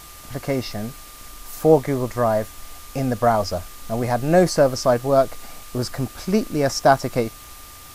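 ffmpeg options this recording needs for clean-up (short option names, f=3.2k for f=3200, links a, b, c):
-af "adeclick=t=4,bandreject=f=1.2k:w=30,afftdn=nr=23:nf=-41"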